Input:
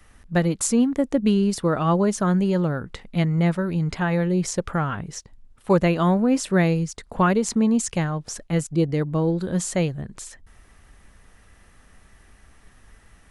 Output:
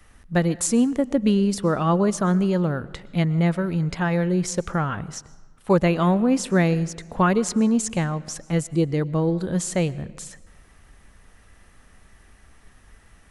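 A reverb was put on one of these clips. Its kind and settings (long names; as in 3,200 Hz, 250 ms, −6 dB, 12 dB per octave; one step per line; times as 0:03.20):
comb and all-pass reverb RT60 1.3 s, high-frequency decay 0.7×, pre-delay 80 ms, DRR 19 dB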